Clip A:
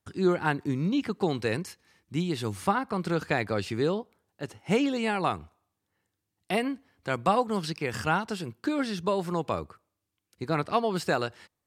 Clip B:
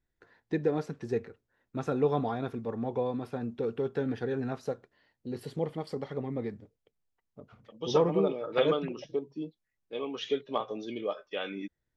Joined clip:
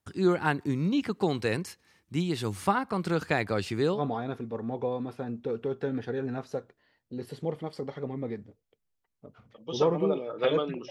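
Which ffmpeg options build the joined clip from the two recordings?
-filter_complex "[0:a]apad=whole_dur=10.9,atrim=end=10.9,atrim=end=4.02,asetpts=PTS-STARTPTS[a];[1:a]atrim=start=2.06:end=9.04,asetpts=PTS-STARTPTS[b];[a][b]acrossfade=d=0.1:c1=tri:c2=tri"

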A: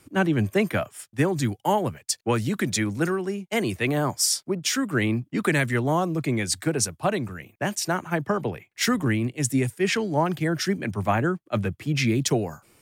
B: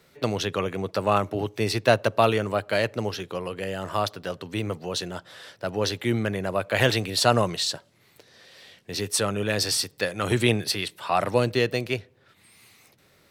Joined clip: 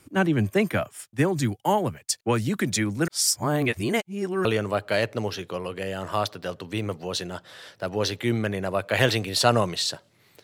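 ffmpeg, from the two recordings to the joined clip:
-filter_complex "[0:a]apad=whole_dur=10.43,atrim=end=10.43,asplit=2[a][b];[a]atrim=end=3.082[c];[b]atrim=start=3.078:end=4.452,asetpts=PTS-STARTPTS,areverse[d];[1:a]atrim=start=2.258:end=8.24[e];[c][d]acrossfade=d=0.004:c1=hsin:c2=hsin[f];[f][e]acrossfade=d=0.004:c1=hsin:c2=hsin"

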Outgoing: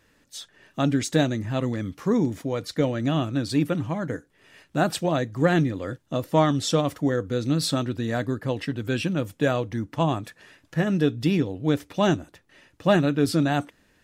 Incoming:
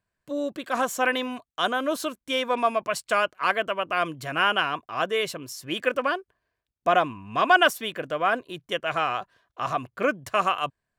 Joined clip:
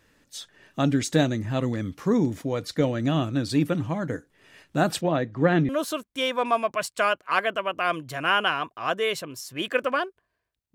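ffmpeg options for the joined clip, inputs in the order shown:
-filter_complex "[0:a]asettb=1/sr,asplit=3[a][b][c];[a]atrim=end=5.014[d];[b]atrim=start=5.01:end=5.69,asetpts=PTS-STARTPTS,afade=t=in:d=0.004:c=qsin,afade=t=out:st=0.676:d=0.004:c=qsin,highpass=120,lowpass=3.1k[e];[c]atrim=start=5.686[f];[d][e]acrossfade=d=0.004:c1=hsin:c2=qsin[g];[g][f]acrossfade=d=0.004:c1=qsin:c2=hsin,apad=whole_dur=10.74,atrim=end=10.74,atrim=end=5.692[h];[1:a]atrim=start=1.808:end=6.86[i];[h][i]acrossfade=d=0.004:c1=hsin:c2=hsin"

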